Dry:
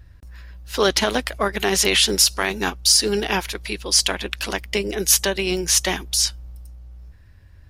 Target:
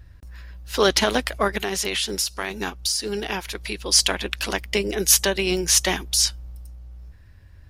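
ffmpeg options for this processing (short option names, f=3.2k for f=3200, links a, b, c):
-filter_complex "[0:a]asplit=3[a][b][c];[a]afade=t=out:st=1.57:d=0.02[d];[b]acompressor=threshold=-26dB:ratio=2.5,afade=t=in:st=1.57:d=0.02,afade=t=out:st=3.83:d=0.02[e];[c]afade=t=in:st=3.83:d=0.02[f];[d][e][f]amix=inputs=3:normalize=0"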